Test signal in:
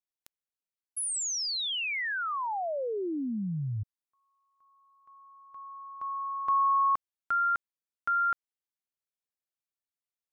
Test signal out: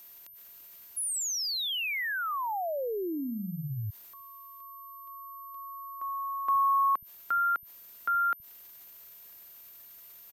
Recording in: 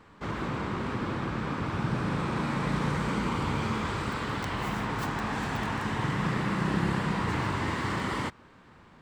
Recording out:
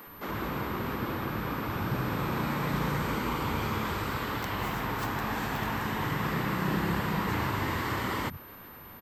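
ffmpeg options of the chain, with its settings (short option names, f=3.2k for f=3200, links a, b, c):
-filter_complex "[0:a]acompressor=mode=upward:threshold=-40dB:ratio=4:attack=0.13:release=65:knee=2.83:detection=peak,acrossover=split=170[a][b];[a]adelay=70[c];[c][b]amix=inputs=2:normalize=0,aeval=exprs='val(0)+0.00355*sin(2*PI*13000*n/s)':c=same"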